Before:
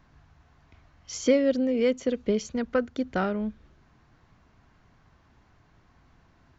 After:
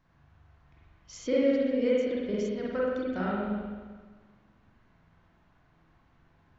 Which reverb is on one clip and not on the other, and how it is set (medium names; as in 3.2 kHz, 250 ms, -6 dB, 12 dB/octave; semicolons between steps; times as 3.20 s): spring tank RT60 1.5 s, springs 43/49 ms, chirp 25 ms, DRR -6.5 dB; trim -10.5 dB